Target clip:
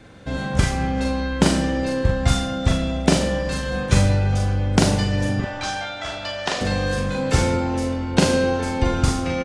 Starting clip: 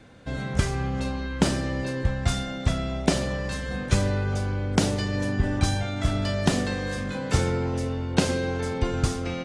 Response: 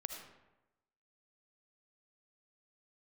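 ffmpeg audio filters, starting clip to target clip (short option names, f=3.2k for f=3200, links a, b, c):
-filter_complex "[0:a]asettb=1/sr,asplit=3[a][b][c];[a]atrim=end=5.404[d];[b]atrim=start=5.4:end=6.61,asetpts=PTS-STARTPTS,afade=t=in:d=0.004:c=qsin,afade=t=out:st=1.206:d=0.004:c=qsin,acrossover=split=480 6700:gain=0.0794 1 0.1[e][f][g];[e][f][g]amix=inputs=3:normalize=0[h];[c]atrim=start=6.606[i];[d][h]acrossfade=d=0.004:c1=hsin:c2=qsin[j];[j][i]acrossfade=d=0.004:c1=qsin:c2=hsin,asplit=2[k][l];[l]adelay=42,volume=-3.5dB[m];[k][m]amix=inputs=2:normalize=0,asplit=2[n][o];[1:a]atrim=start_sample=2205[p];[o][p]afir=irnorm=-1:irlink=0,volume=-1.5dB[q];[n][q]amix=inputs=2:normalize=0"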